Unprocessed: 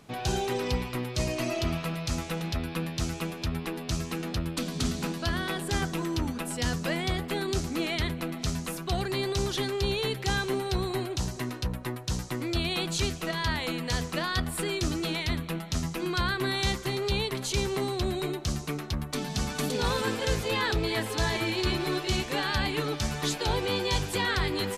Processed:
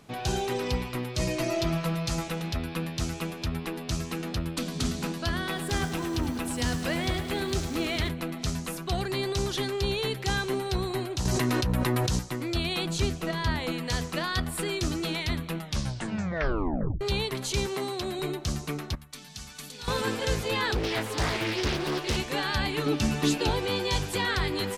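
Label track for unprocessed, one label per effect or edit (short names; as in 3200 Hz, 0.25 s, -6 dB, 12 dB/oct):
1.210000	2.280000	comb 5.9 ms
5.370000	8.090000	lo-fi delay 0.105 s, feedback 80%, word length 8-bit, level -11 dB
11.250000	12.190000	fast leveller amount 100%
12.850000	13.720000	tilt shelf lows +3 dB
15.590000	15.590000	tape stop 1.42 s
17.660000	18.190000	HPF 280 Hz 6 dB/oct
18.950000	19.880000	passive tone stack bass-middle-treble 5-5-5
20.750000	22.170000	Doppler distortion depth 0.93 ms
22.860000	23.500000	small resonant body resonances 250/2700 Hz, height 11 dB, ringing for 20 ms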